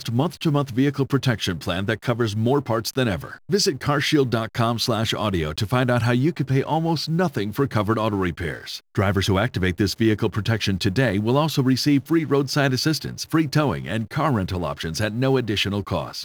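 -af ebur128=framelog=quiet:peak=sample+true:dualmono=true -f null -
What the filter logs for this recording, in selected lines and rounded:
Integrated loudness:
  I:         -19.1 LUFS
  Threshold: -29.1 LUFS
Loudness range:
  LRA:         2.0 LU
  Threshold: -39.0 LUFS
  LRA low:   -19.9 LUFS
  LRA high:  -17.9 LUFS
Sample peak:
  Peak:       -6.8 dBFS
True peak:
  Peak:       -6.8 dBFS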